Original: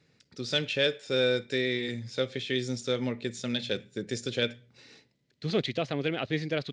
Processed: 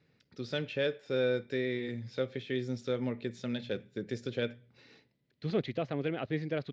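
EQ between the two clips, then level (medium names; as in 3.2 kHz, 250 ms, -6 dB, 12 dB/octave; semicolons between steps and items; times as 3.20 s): distance through air 160 m; dynamic bell 3.6 kHz, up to -6 dB, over -47 dBFS, Q 0.78; -2.5 dB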